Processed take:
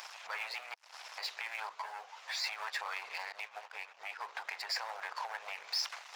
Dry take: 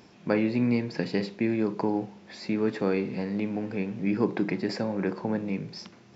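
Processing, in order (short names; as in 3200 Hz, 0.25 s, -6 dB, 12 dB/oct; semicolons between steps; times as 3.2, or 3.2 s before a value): 0.74–1.18 room tone; compressor 4:1, threshold -36 dBFS, peak gain reduction 14.5 dB; 3.32–4.22 expander -32 dBFS; sample leveller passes 3; harmonic-percussive split harmonic -14 dB; limiter -34 dBFS, peak gain reduction 9.5 dB; power-law curve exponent 1.4; inverse Chebyshev high-pass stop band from 310 Hz, stop band 50 dB; 1.69–2.44 ensemble effect; gain +9 dB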